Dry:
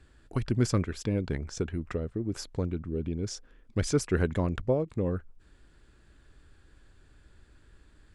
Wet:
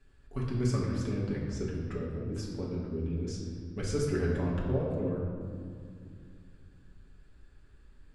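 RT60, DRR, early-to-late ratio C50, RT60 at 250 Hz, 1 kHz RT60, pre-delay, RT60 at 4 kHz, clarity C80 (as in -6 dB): 2.3 s, -6.0 dB, 1.0 dB, 3.5 s, 2.2 s, 5 ms, 1.3 s, 3.0 dB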